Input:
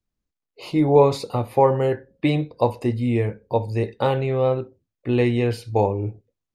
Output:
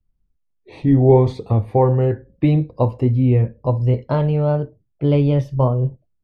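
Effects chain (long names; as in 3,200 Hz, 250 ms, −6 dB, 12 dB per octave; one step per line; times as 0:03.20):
gliding playback speed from 84% → 126%
RIAA equalisation playback
level −2.5 dB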